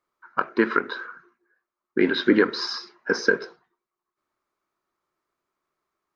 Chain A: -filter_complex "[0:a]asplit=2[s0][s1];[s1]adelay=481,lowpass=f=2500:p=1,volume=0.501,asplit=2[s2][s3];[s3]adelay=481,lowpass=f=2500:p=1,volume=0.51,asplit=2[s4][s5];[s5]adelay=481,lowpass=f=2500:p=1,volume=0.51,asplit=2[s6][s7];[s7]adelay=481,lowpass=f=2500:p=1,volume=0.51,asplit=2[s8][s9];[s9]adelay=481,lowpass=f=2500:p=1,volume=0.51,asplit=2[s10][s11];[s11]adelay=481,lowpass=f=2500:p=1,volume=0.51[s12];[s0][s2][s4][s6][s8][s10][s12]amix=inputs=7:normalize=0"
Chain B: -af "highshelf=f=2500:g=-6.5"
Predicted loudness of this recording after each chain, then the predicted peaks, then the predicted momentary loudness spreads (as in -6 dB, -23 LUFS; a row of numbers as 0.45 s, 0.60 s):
-24.5 LUFS, -24.5 LUFS; -4.5 dBFS, -5.5 dBFS; 18 LU, 15 LU